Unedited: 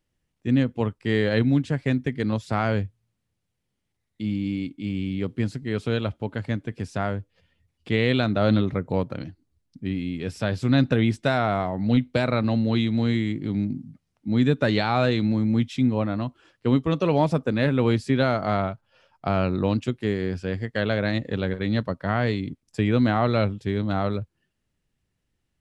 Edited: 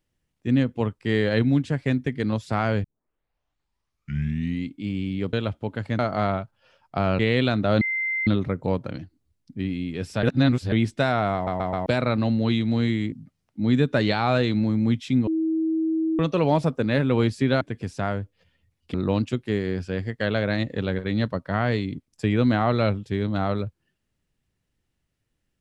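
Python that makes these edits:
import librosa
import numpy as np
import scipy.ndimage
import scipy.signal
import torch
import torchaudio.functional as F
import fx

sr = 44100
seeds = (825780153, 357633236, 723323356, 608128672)

y = fx.edit(x, sr, fx.tape_start(start_s=2.84, length_s=1.91),
    fx.cut(start_s=5.33, length_s=0.59),
    fx.swap(start_s=6.58, length_s=1.33, other_s=18.29, other_length_s=1.2),
    fx.insert_tone(at_s=8.53, length_s=0.46, hz=2080.0, db=-23.0),
    fx.reverse_span(start_s=10.49, length_s=0.49),
    fx.stutter_over(start_s=11.6, slice_s=0.13, count=4),
    fx.cut(start_s=13.38, length_s=0.42),
    fx.bleep(start_s=15.95, length_s=0.92, hz=321.0, db=-20.5), tone=tone)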